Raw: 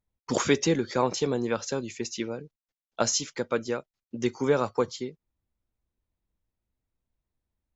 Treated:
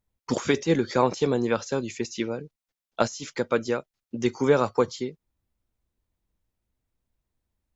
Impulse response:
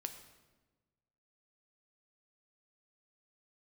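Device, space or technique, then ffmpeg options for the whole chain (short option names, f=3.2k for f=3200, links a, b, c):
de-esser from a sidechain: -filter_complex "[0:a]asplit=2[a][b];[b]highpass=6.9k,apad=whole_len=341939[c];[a][c]sidechaincompress=threshold=-43dB:ratio=10:attack=2.7:release=54,volume=3.5dB"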